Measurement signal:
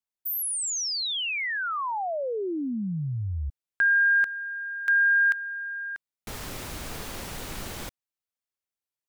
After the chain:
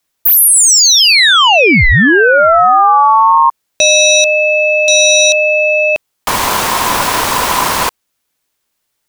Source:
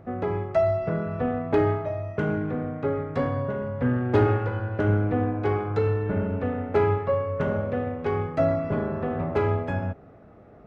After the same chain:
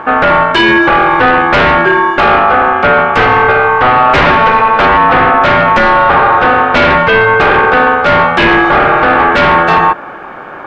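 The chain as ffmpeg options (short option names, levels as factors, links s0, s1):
-filter_complex "[0:a]asplit=2[s0][s1];[s1]alimiter=limit=0.119:level=0:latency=1,volume=1.12[s2];[s0][s2]amix=inputs=2:normalize=0,aeval=exprs='0.562*sin(PI/2*3.98*val(0)/0.562)':c=same,aeval=exprs='val(0)*sin(2*PI*1000*n/s)':c=same,volume=1.58"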